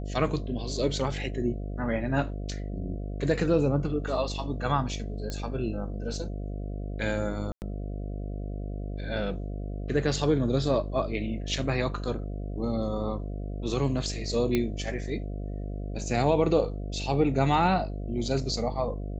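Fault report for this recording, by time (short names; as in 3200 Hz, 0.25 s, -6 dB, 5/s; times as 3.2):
buzz 50 Hz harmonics 14 -34 dBFS
5.3 pop -20 dBFS
7.52–7.62 gap 99 ms
14.55 pop -13 dBFS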